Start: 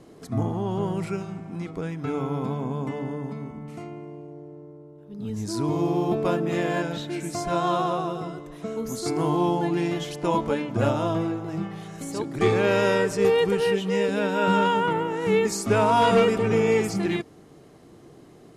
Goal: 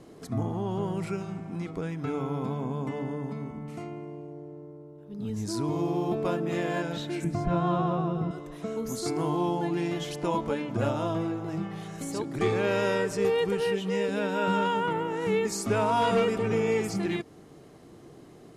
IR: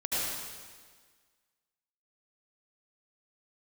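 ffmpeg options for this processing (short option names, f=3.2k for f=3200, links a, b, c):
-filter_complex "[0:a]asettb=1/sr,asplit=3[a][b][c];[a]atrim=end=7.244[d];[b]atrim=start=7.24:end=8.31,asetpts=PTS-STARTPTS,afade=t=in:d=0.004:c=qsin,afade=t=out:st=1.066:d=0.004:c=qsin,bass=f=250:g=13,treble=f=4k:g=-15[e];[c]atrim=start=8.306[f];[d][e]acrossfade=d=0.004:c1=hsin:c2=qsin[g];[g][f]acrossfade=d=0.004:c1=qsin:c2=hsin,asplit=2[h][i];[i]acompressor=threshold=-29dB:ratio=6,volume=2.5dB[j];[h][j]amix=inputs=2:normalize=0,volume=-8dB"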